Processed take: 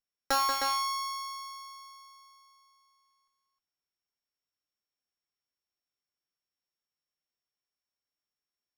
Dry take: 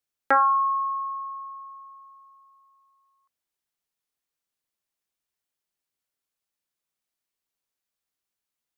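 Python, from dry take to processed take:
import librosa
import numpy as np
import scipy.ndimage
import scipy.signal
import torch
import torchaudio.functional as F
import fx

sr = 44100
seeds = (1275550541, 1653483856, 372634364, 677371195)

y = np.r_[np.sort(x[:len(x) // 8 * 8].reshape(-1, 8), axis=1).ravel(), x[len(x) // 8 * 8:]]
y = fx.echo_multitap(y, sr, ms=(184, 310), db=(-6.5, -5.0))
y = fx.running_max(y, sr, window=3)
y = y * 10.0 ** (-8.0 / 20.0)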